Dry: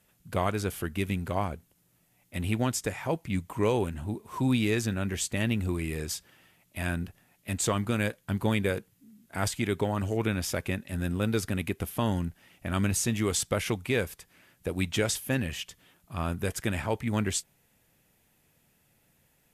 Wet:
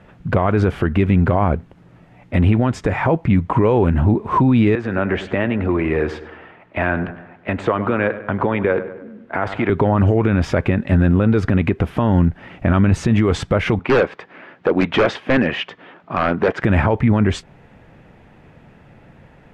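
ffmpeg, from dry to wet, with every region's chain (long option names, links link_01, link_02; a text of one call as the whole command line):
ffmpeg -i in.wav -filter_complex "[0:a]asettb=1/sr,asplit=3[link_01][link_02][link_03];[link_01]atrim=end=4.754[link_04];[link_02]atrim=start=4.75:end=9.7,asetpts=PTS-STARTPTS,afade=type=in:duration=0.004:curve=qsin,afade=type=out:start_time=4.946:duration=0.004:curve=qsin,acompressor=threshold=-31dB:ratio=4:attack=3.2:release=140:knee=1:detection=peak,acrossover=split=320 3200:gain=0.224 1 0.2[link_05][link_06][link_07];[link_05][link_06][link_07]amix=inputs=3:normalize=0,asplit=2[link_08][link_09];[link_09]adelay=100,lowpass=frequency=3000:poles=1,volume=-14dB,asplit=2[link_10][link_11];[link_11]adelay=100,lowpass=frequency=3000:poles=1,volume=0.52,asplit=2[link_12][link_13];[link_13]adelay=100,lowpass=frequency=3000:poles=1,volume=0.52,asplit=2[link_14][link_15];[link_15]adelay=100,lowpass=frequency=3000:poles=1,volume=0.52,asplit=2[link_16][link_17];[link_17]adelay=100,lowpass=frequency=3000:poles=1,volume=0.52[link_18];[link_08][link_10][link_12][link_14][link_16][link_18]amix=inputs=6:normalize=0,atrim=end_sample=218295[link_19];[link_03]atrim=start=9.696[link_20];[link_04][link_19]acrossfade=duration=0.004:curve1=hsin:curve2=qsin[link_21];[link_21][link_20]acrossfade=duration=0.004:curve1=qsin:curve2=hsin,asettb=1/sr,asplit=3[link_22][link_23][link_24];[link_22]atrim=end=13.794[link_25];[link_23]atrim=start=13.79:end=16.62,asetpts=PTS-STARTPTS,afade=type=in:duration=0.004:curve=qsin,afade=type=out:start_time=2.826:duration=0.004:curve=qsin,highpass=290,lowpass=4100,aeval=exprs='0.0447*(abs(mod(val(0)/0.0447+3,4)-2)-1)':channel_layout=same[link_26];[link_24]atrim=start=16.616[link_27];[link_25][link_26]acrossfade=duration=0.004:curve1=hsin:curve2=qsin[link_28];[link_28][link_27]acrossfade=duration=0.004:curve1=qsin:curve2=hsin,lowpass=1600,acompressor=threshold=-39dB:ratio=1.5,alimiter=level_in=30dB:limit=-1dB:release=50:level=0:latency=1,volume=-6dB" out.wav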